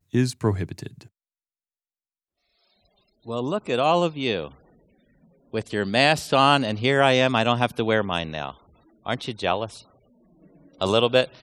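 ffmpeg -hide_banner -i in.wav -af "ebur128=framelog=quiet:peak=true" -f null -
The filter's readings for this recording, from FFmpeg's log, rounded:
Integrated loudness:
  I:         -22.6 LUFS
  Threshold: -34.3 LUFS
Loudness range:
  LRA:         9.9 LU
  Threshold: -44.4 LUFS
  LRA low:   -30.9 LUFS
  LRA high:  -21.0 LUFS
True peak:
  Peak:       -3.1 dBFS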